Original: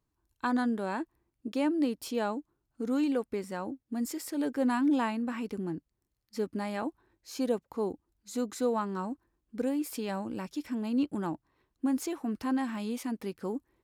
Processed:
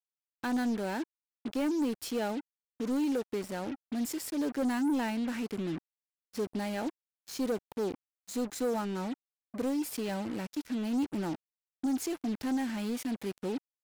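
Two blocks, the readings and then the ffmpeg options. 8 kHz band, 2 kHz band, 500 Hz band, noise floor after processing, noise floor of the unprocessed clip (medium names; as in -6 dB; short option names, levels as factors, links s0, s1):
+2.0 dB, -1.0 dB, -1.5 dB, under -85 dBFS, -81 dBFS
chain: -af "equalizer=f=1100:t=o:w=0.27:g=-15,acrusher=bits=6:mix=0:aa=0.5,asoftclip=type=tanh:threshold=0.0473,volume=1.19"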